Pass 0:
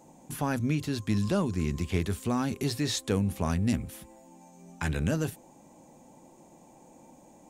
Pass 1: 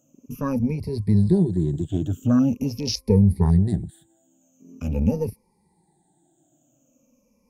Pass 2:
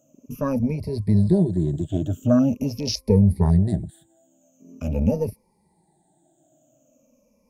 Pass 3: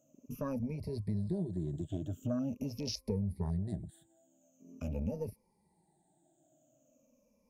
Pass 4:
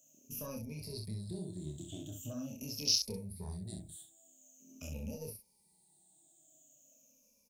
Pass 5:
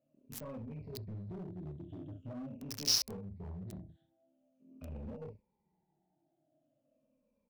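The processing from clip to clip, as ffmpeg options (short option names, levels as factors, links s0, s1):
-af "afftfilt=real='re*pow(10,23/40*sin(2*PI*(0.87*log(max(b,1)*sr/1024/100)/log(2)-(-0.44)*(pts-256)/sr)))':imag='im*pow(10,23/40*sin(2*PI*(0.87*log(max(b,1)*sr/1024/100)/log(2)-(-0.44)*(pts-256)/sr)))':win_size=1024:overlap=0.75,equalizer=f=1000:t=o:w=2.8:g=-9.5,afwtdn=0.0224,volume=1.88"
-af "equalizer=f=620:w=6.2:g=13"
-af "acompressor=threshold=0.0447:ratio=2.5,volume=0.376"
-filter_complex "[0:a]asplit=2[s0][s1];[s1]aecho=0:1:27|65:0.668|0.501[s2];[s0][s2]amix=inputs=2:normalize=0,aexciter=amount=5.7:drive=6.8:freq=2500,volume=0.355"
-filter_complex "[0:a]acrossover=split=1900[s0][s1];[s0]asoftclip=type=hard:threshold=0.01[s2];[s1]acrusher=bits=5:mix=0:aa=0.000001[s3];[s2][s3]amix=inputs=2:normalize=0"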